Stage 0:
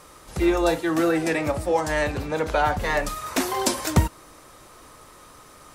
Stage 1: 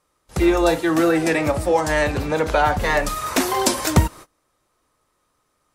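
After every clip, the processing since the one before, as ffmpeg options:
-filter_complex "[0:a]agate=range=-28dB:threshold=-40dB:ratio=16:detection=peak,asplit=2[a][b];[b]acompressor=threshold=-29dB:ratio=6,volume=-2dB[c];[a][c]amix=inputs=2:normalize=0,volume=2dB"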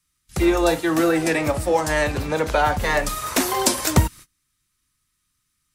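-filter_complex "[0:a]highshelf=f=6.7k:g=4.5,acrossover=split=230|1600|4900[a][b][c][d];[b]aeval=exprs='sgn(val(0))*max(abs(val(0))-0.01,0)':c=same[e];[a][e][c][d]amix=inputs=4:normalize=0,volume=-1dB"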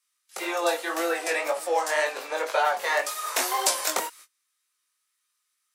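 -af "highpass=f=490:w=0.5412,highpass=f=490:w=1.3066,flanger=delay=18:depth=4.5:speed=1.9"

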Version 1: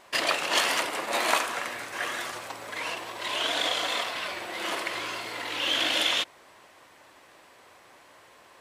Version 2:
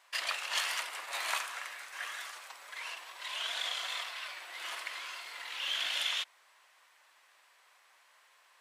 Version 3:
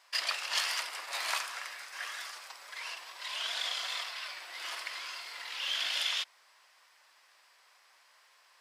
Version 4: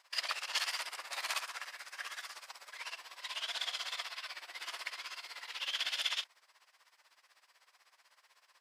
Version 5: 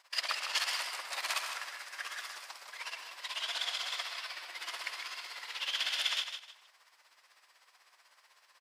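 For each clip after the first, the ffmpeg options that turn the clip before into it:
-af "highpass=1.1k,volume=-7.5dB"
-af "equalizer=f=5k:t=o:w=0.34:g=8.5"
-af "tremolo=f=16:d=0.82"
-af "aecho=1:1:155|310|465:0.398|0.111|0.0312,volume=2dB"

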